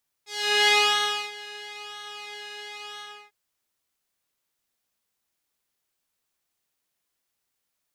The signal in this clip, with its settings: synth patch with pulse-width modulation G#4, sub -22 dB, filter bandpass, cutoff 1800 Hz, Q 1.3, filter envelope 1.5 oct, filter sustain 50%, attack 0.423 s, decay 0.62 s, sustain -21 dB, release 0.31 s, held 2.74 s, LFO 1 Hz, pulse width 27%, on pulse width 10%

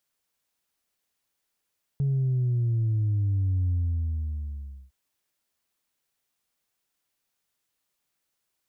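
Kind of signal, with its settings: sub drop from 140 Hz, over 2.91 s, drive 0.5 dB, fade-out 1.22 s, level -22 dB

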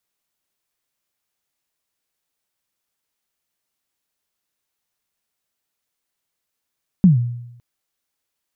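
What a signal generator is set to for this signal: kick drum length 0.56 s, from 200 Hz, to 120 Hz, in 0.134 s, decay 0.85 s, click off, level -5 dB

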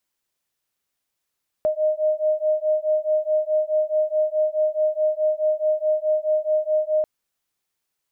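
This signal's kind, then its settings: beating tones 615 Hz, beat 4.7 Hz, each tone -21.5 dBFS 5.39 s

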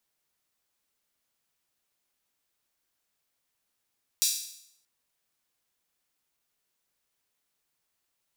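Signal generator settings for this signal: open hi-hat length 0.63 s, high-pass 4700 Hz, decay 0.71 s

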